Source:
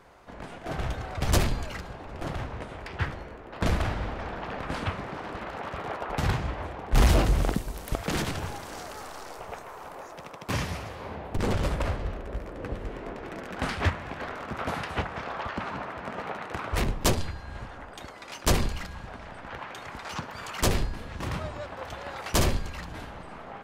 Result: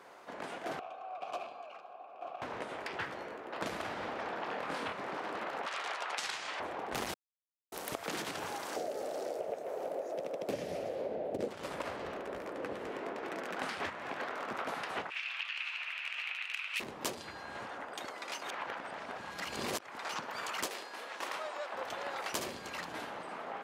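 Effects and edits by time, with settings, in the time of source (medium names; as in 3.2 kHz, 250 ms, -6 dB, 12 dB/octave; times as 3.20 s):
0.79–2.42 s: vowel filter a
4.44–4.93 s: flutter echo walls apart 4.3 m, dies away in 0.27 s
5.66–6.60 s: frequency weighting ITU-R 468
7.14–7.72 s: mute
8.76–11.48 s: resonant low shelf 780 Hz +9.5 dB, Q 3
15.10–16.80 s: resonant high-pass 2.6 kHz, resonance Q 6.2
18.42–19.83 s: reverse
20.66–21.74 s: high-pass 520 Hz
whole clip: high-pass 310 Hz 12 dB/octave; compression 6:1, threshold -36 dBFS; trim +1 dB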